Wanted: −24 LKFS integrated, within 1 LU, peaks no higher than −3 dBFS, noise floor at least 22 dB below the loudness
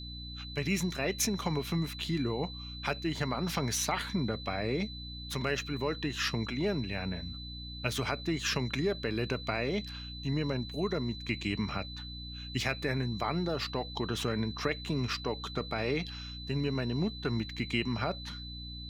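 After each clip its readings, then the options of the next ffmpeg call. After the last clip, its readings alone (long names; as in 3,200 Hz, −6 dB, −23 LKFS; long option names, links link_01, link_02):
mains hum 60 Hz; hum harmonics up to 300 Hz; level of the hum −42 dBFS; interfering tone 4,000 Hz; level of the tone −44 dBFS; integrated loudness −33.5 LKFS; sample peak −15.5 dBFS; target loudness −24.0 LKFS
→ -af "bandreject=frequency=60:width_type=h:width=4,bandreject=frequency=120:width_type=h:width=4,bandreject=frequency=180:width_type=h:width=4,bandreject=frequency=240:width_type=h:width=4,bandreject=frequency=300:width_type=h:width=4"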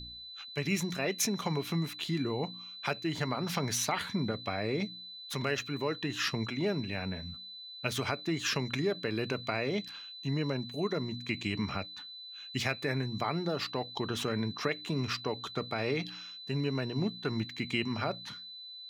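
mains hum none found; interfering tone 4,000 Hz; level of the tone −44 dBFS
→ -af "bandreject=frequency=4000:width=30"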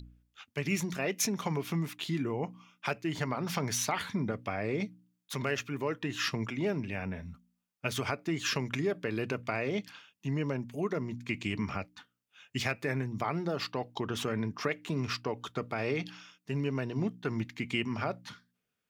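interfering tone none found; integrated loudness −34.0 LKFS; sample peak −15.5 dBFS; target loudness −24.0 LKFS
→ -af "volume=10dB"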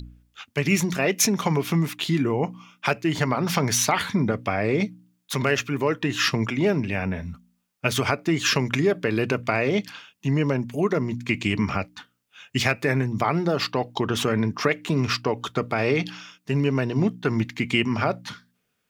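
integrated loudness −24.0 LKFS; sample peak −5.5 dBFS; background noise floor −73 dBFS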